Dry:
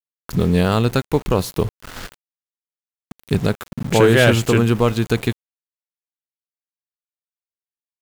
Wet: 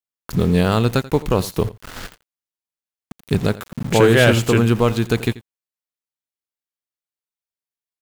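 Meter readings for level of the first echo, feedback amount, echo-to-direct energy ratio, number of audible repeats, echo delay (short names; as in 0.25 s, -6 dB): -18.5 dB, no steady repeat, -18.5 dB, 1, 86 ms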